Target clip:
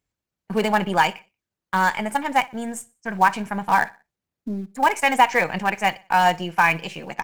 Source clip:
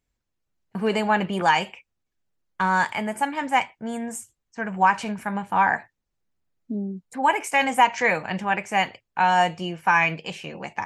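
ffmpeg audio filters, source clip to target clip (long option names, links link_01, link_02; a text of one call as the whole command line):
ffmpeg -i in.wav -filter_complex "[0:a]highpass=59,asplit=2[link_01][link_02];[link_02]acrusher=bits=4:dc=4:mix=0:aa=0.000001,volume=-11dB[link_03];[link_01][link_03]amix=inputs=2:normalize=0,atempo=1.5,aecho=1:1:61|122|183:0.0794|0.0294|0.0109" out.wav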